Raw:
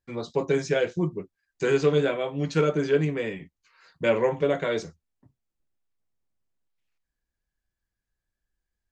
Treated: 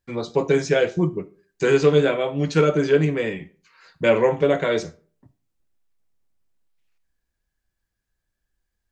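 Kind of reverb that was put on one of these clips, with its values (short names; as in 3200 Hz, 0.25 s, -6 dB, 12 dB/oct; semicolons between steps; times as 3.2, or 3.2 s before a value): digital reverb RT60 0.43 s, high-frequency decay 0.65×, pre-delay 10 ms, DRR 17 dB; gain +5 dB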